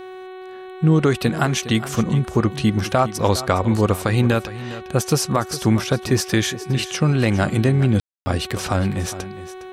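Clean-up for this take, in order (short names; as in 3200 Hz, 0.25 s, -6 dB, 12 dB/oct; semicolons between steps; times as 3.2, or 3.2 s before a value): de-hum 372.5 Hz, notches 11; room tone fill 8–8.26; inverse comb 0.41 s -14.5 dB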